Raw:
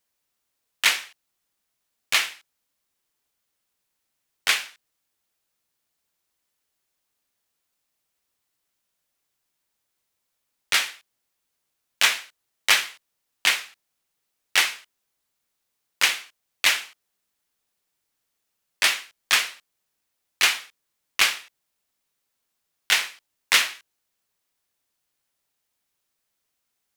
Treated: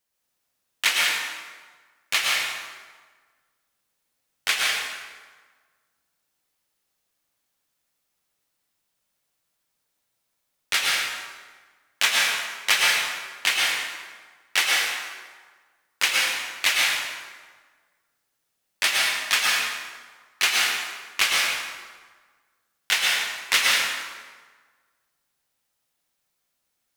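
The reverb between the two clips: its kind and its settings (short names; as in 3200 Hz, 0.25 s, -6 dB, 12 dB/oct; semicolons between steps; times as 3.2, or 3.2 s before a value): plate-style reverb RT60 1.5 s, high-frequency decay 0.7×, pre-delay 95 ms, DRR -3 dB; gain -2.5 dB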